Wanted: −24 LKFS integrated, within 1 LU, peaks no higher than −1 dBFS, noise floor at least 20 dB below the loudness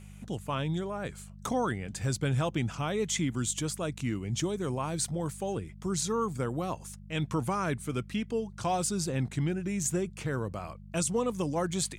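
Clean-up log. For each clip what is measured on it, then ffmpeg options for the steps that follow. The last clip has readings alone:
mains hum 50 Hz; hum harmonics up to 200 Hz; level of the hum −44 dBFS; integrated loudness −32.0 LKFS; sample peak −17.5 dBFS; target loudness −24.0 LKFS
→ -af "bandreject=frequency=50:width_type=h:width=4,bandreject=frequency=100:width_type=h:width=4,bandreject=frequency=150:width_type=h:width=4,bandreject=frequency=200:width_type=h:width=4"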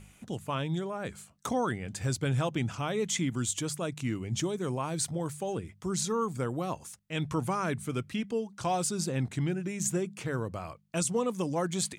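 mains hum none found; integrated loudness −32.5 LKFS; sample peak −17.0 dBFS; target loudness −24.0 LKFS
→ -af "volume=8.5dB"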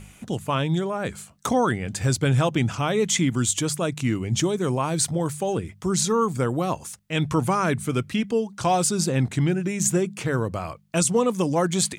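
integrated loudness −24.0 LKFS; sample peak −8.5 dBFS; background noise floor −51 dBFS

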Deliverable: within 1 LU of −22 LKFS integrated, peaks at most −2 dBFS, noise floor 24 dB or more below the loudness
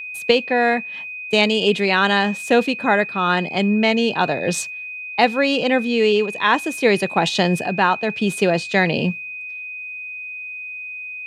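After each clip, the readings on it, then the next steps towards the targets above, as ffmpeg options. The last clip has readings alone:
interfering tone 2,500 Hz; level of the tone −29 dBFS; integrated loudness −19.5 LKFS; sample peak −2.0 dBFS; target loudness −22.0 LKFS
→ -af "bandreject=frequency=2500:width=30"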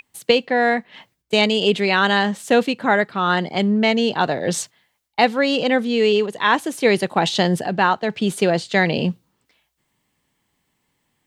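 interfering tone none found; integrated loudness −19.0 LKFS; sample peak −2.0 dBFS; target loudness −22.0 LKFS
→ -af "volume=-3dB"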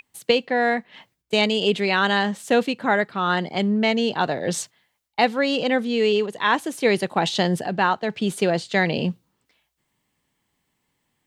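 integrated loudness −22.0 LKFS; sample peak −5.0 dBFS; background noise floor −75 dBFS

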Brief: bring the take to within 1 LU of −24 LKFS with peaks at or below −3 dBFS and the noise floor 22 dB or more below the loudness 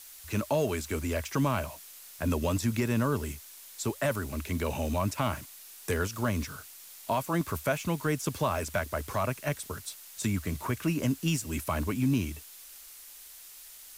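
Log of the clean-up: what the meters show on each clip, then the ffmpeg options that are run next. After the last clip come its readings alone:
background noise floor −49 dBFS; target noise floor −54 dBFS; integrated loudness −31.5 LKFS; sample peak −17.5 dBFS; target loudness −24.0 LKFS
→ -af "afftdn=noise_reduction=6:noise_floor=-49"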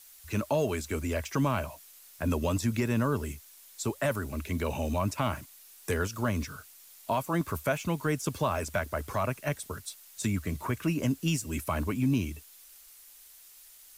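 background noise floor −54 dBFS; integrated loudness −31.5 LKFS; sample peak −17.5 dBFS; target loudness −24.0 LKFS
→ -af "volume=7.5dB"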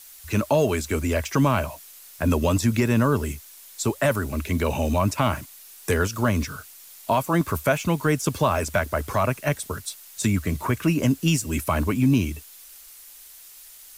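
integrated loudness −24.0 LKFS; sample peak −10.0 dBFS; background noise floor −46 dBFS

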